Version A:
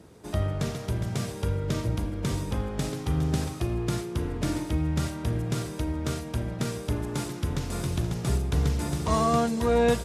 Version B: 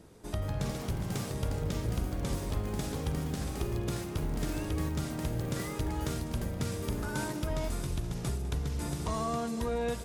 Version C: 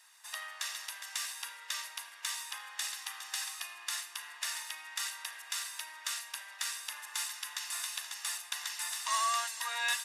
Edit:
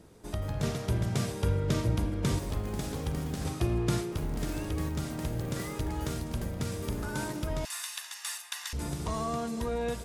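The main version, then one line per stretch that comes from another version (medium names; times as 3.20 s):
B
0.63–2.39 s: from A
3.45–4.12 s: from A
7.65–8.73 s: from C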